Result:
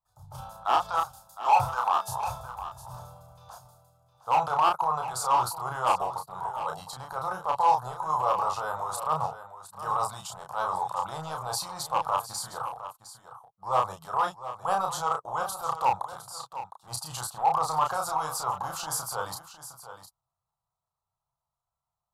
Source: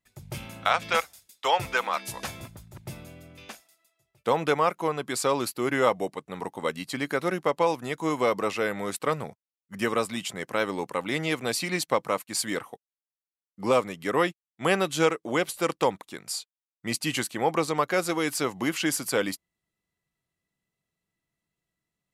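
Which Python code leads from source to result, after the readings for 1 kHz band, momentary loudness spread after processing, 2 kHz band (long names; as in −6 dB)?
+5.0 dB, 18 LU, −9.5 dB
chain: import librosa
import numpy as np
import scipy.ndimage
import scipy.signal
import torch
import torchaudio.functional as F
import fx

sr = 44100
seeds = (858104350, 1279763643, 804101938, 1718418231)

y = fx.hpss(x, sr, part='harmonic', gain_db=-4)
y = fx.high_shelf_res(y, sr, hz=1700.0, db=-9.0, q=3.0)
y = fx.transient(y, sr, attack_db=-10, sustain_db=5)
y = fx.curve_eq(y, sr, hz=(130.0, 270.0, 850.0, 2000.0, 3700.0), db=(0, -28, 8, -14, 2))
y = np.clip(y, -10.0 ** (-17.5 / 20.0), 10.0 ** (-17.5 / 20.0))
y = fx.doubler(y, sr, ms=32.0, db=-3.5)
y = y + 10.0 ** (-12.5 / 20.0) * np.pad(y, (int(710 * sr / 1000.0), 0))[:len(y)]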